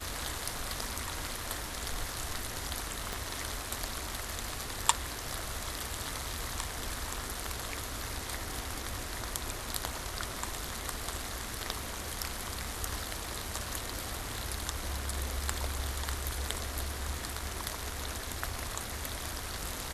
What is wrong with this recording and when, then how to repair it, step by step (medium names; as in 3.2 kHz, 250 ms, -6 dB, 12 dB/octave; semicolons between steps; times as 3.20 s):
3.13 s: pop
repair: de-click